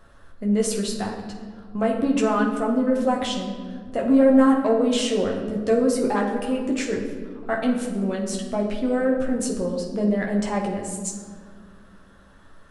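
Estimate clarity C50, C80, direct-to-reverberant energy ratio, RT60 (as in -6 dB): 5.0 dB, 7.0 dB, -1.5 dB, 1.9 s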